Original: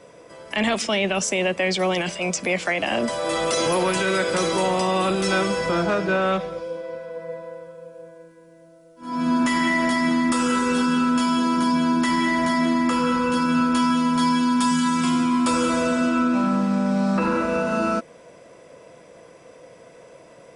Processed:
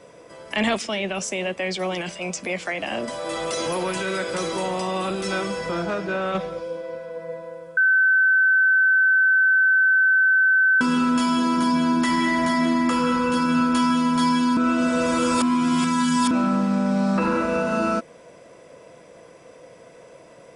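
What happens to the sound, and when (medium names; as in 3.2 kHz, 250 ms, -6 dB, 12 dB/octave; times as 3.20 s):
0.77–6.35 s: flange 1.1 Hz, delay 1.6 ms, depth 4.9 ms, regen -83%
7.77–10.81 s: bleep 1.53 kHz -14 dBFS
14.57–16.31 s: reverse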